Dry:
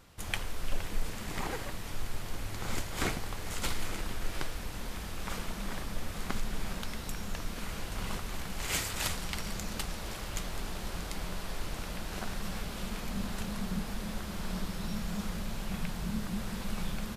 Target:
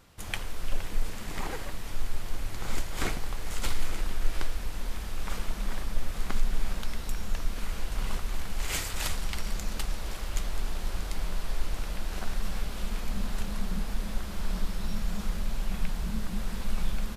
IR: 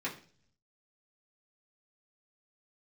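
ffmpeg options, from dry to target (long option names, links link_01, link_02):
-af "asubboost=boost=3:cutoff=60"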